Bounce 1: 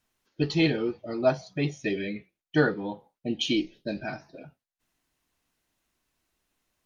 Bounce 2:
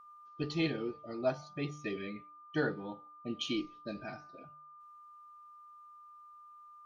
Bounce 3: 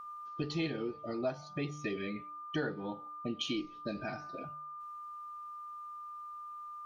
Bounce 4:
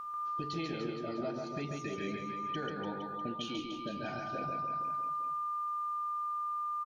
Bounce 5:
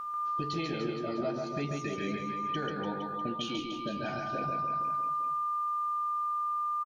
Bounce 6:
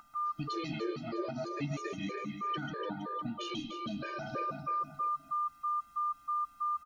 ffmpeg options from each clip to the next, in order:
ffmpeg -i in.wav -af "aeval=exprs='val(0)+0.00708*sin(2*PI*1200*n/s)':channel_layout=same,bandreject=frequency=149.1:width_type=h:width=4,bandreject=frequency=298.2:width_type=h:width=4,bandreject=frequency=447.3:width_type=h:width=4,bandreject=frequency=596.4:width_type=h:width=4,bandreject=frequency=745.5:width_type=h:width=4,bandreject=frequency=894.6:width_type=h:width=4,bandreject=frequency=1043.7:width_type=h:width=4,bandreject=frequency=1192.8:width_type=h:width=4,bandreject=frequency=1341.9:width_type=h:width=4,bandreject=frequency=1491:width_type=h:width=4,volume=-9dB" out.wav
ffmpeg -i in.wav -af "acompressor=threshold=-47dB:ratio=2.5,volume=9.5dB" out.wav
ffmpeg -i in.wav -af "alimiter=level_in=10dB:limit=-24dB:level=0:latency=1:release=448,volume=-10dB,aecho=1:1:140|294|463.4|649.7|854.7:0.631|0.398|0.251|0.158|0.1,volume=4.5dB" out.wav
ffmpeg -i in.wav -filter_complex "[0:a]asplit=2[link_01][link_02];[link_02]adelay=14,volume=-13.5dB[link_03];[link_01][link_03]amix=inputs=2:normalize=0,volume=3.5dB" out.wav
ffmpeg -i in.wav -af "afftfilt=real='re*gt(sin(2*PI*3.1*pts/sr)*(1-2*mod(floor(b*sr/1024/310),2)),0)':imag='im*gt(sin(2*PI*3.1*pts/sr)*(1-2*mod(floor(b*sr/1024/310),2)),0)':win_size=1024:overlap=0.75" out.wav

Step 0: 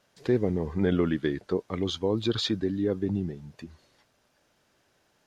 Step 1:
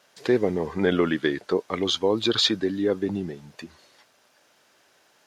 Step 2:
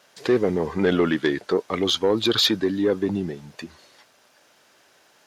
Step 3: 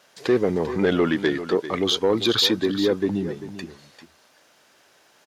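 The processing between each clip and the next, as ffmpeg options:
ffmpeg -i in.wav -af "highpass=frequency=550:poles=1,volume=9dB" out.wav
ffmpeg -i in.wav -af "asoftclip=type=tanh:threshold=-14dB,volume=3.5dB" out.wav
ffmpeg -i in.wav -af "aecho=1:1:394:0.237" out.wav

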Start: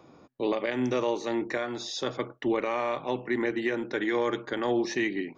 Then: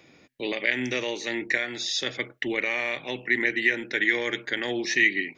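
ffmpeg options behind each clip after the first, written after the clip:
ffmpeg -i in.wav -af "highshelf=frequency=1500:width_type=q:width=3:gain=9,volume=-2.5dB" out.wav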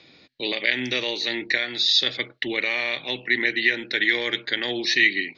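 ffmpeg -i in.wav -af "lowpass=frequency=4200:width_type=q:width=5.5" out.wav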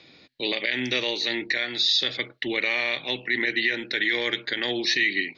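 ffmpeg -i in.wav -af "alimiter=limit=-12.5dB:level=0:latency=1:release=36" out.wav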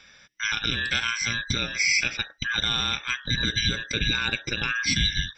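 ffmpeg -i in.wav -af "afftfilt=real='real(if(between(b,1,1012),(2*floor((b-1)/92)+1)*92-b,b),0)':imag='imag(if(between(b,1,1012),(2*floor((b-1)/92)+1)*92-b,b),0)*if(between(b,1,1012),-1,1)':win_size=2048:overlap=0.75" out.wav

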